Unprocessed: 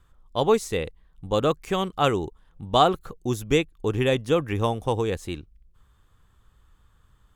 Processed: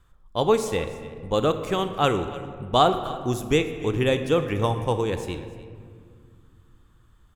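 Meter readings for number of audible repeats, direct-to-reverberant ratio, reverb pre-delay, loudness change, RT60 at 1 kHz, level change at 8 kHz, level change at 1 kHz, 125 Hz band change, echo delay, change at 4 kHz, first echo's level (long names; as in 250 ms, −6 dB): 1, 8.0 dB, 24 ms, +0.5 dB, 1.9 s, +0.5 dB, +0.5 dB, +1.0 dB, 297 ms, +0.5 dB, −18.0 dB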